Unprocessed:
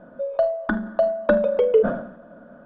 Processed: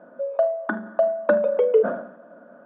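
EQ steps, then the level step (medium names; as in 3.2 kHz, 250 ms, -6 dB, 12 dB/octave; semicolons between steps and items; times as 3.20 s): band-pass 290–2200 Hz; 0.0 dB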